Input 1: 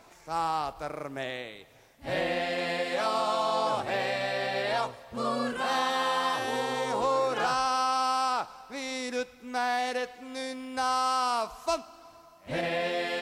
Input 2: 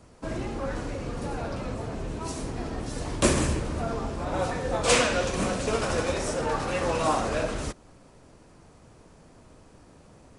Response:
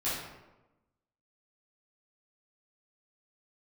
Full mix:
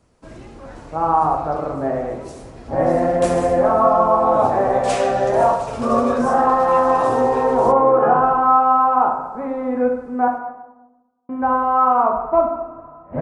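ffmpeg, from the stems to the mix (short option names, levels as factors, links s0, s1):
-filter_complex "[0:a]lowpass=f=1200:w=0.5412,lowpass=f=1200:w=1.3066,acontrast=83,adelay=650,volume=1.19,asplit=3[s0][s1][s2];[s0]atrim=end=10.28,asetpts=PTS-STARTPTS,afade=t=out:st=10.276:d=0.004:c=hsin[s3];[s1]atrim=start=10.28:end=11.29,asetpts=PTS-STARTPTS,volume=0[s4];[s2]atrim=start=11.29,asetpts=PTS-STARTPTS,afade=t=in:d=0.004:c=hsin[s5];[s3][s4][s5]concat=n=3:v=0:a=1,asplit=2[s6][s7];[s7]volume=0.562[s8];[1:a]volume=0.473[s9];[2:a]atrim=start_sample=2205[s10];[s8][s10]afir=irnorm=-1:irlink=0[s11];[s6][s9][s11]amix=inputs=3:normalize=0"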